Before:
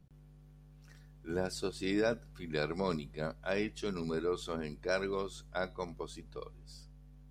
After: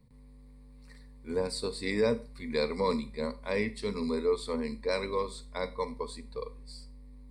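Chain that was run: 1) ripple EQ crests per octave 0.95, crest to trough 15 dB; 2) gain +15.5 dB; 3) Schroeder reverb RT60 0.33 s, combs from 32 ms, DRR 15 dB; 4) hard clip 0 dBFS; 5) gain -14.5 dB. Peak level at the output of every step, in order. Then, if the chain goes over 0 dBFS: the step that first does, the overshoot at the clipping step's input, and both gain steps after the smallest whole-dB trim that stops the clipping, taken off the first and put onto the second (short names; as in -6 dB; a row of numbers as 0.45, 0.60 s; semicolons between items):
-17.5, -2.0, -2.0, -2.0, -16.5 dBFS; no overload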